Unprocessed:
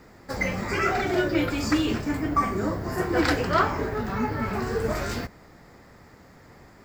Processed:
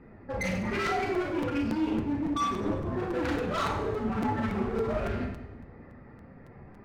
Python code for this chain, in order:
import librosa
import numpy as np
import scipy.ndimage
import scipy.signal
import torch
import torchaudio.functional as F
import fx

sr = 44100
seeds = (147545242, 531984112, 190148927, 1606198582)

p1 = fx.spec_expand(x, sr, power=1.8)
p2 = scipy.signal.sosfilt(scipy.signal.butter(4, 3600.0, 'lowpass', fs=sr, output='sos'), p1)
p3 = fx.peak_eq(p2, sr, hz=2600.0, db=11.0, octaves=0.2)
p4 = fx.rider(p3, sr, range_db=4, speed_s=0.5)
p5 = p3 + (p4 * 10.0 ** (-1.5 / 20.0))
p6 = np.clip(10.0 ** (21.0 / 20.0) * p5, -1.0, 1.0) / 10.0 ** (21.0 / 20.0)
p7 = p6 + fx.echo_split(p6, sr, split_hz=350.0, low_ms=193, high_ms=99, feedback_pct=52, wet_db=-11.5, dry=0)
p8 = fx.rev_schroeder(p7, sr, rt60_s=0.39, comb_ms=28, drr_db=1.0)
p9 = fx.buffer_crackle(p8, sr, first_s=0.86, period_s=0.28, block=256, kind='repeat')
p10 = fx.doppler_dist(p9, sr, depth_ms=0.13)
y = p10 * 10.0 ** (-8.5 / 20.0)